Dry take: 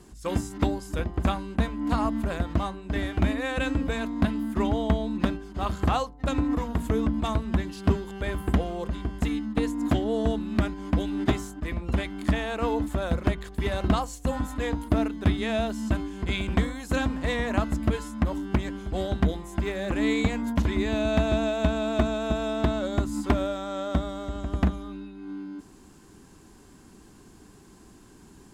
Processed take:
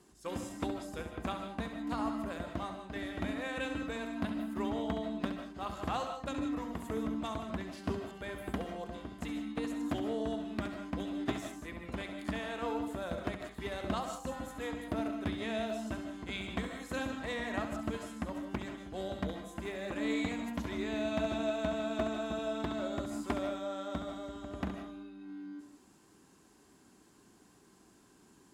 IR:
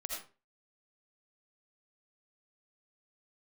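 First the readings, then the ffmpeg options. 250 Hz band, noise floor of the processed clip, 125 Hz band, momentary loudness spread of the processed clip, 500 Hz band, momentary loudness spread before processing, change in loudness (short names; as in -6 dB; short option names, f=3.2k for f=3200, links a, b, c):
-9.5 dB, -63 dBFS, -16.0 dB, 7 LU, -8.0 dB, 6 LU, -10.0 dB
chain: -filter_complex "[0:a]highpass=f=220:p=1,asplit=2[a][b];[1:a]atrim=start_sample=2205,adelay=68[c];[b][c]afir=irnorm=-1:irlink=0,volume=-5dB[d];[a][d]amix=inputs=2:normalize=0,volume=-9dB"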